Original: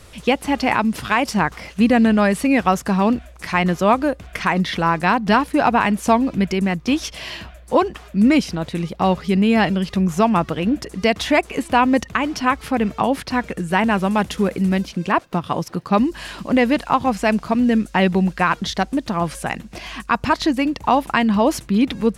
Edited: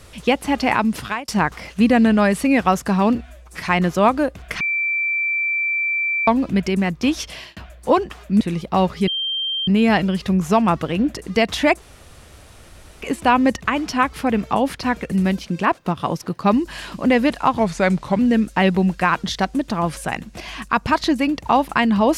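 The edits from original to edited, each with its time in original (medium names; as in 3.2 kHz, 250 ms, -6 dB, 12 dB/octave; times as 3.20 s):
0.98–1.28 s: fade out
3.15–3.46 s: stretch 1.5×
4.45–6.12 s: bleep 2.34 kHz -18 dBFS
7.15–7.41 s: fade out
8.25–8.68 s: delete
9.35 s: add tone 3.16 kHz -20.5 dBFS 0.60 s
11.49 s: insert room tone 1.20 s
13.59–14.58 s: delete
17.05–17.57 s: speed 86%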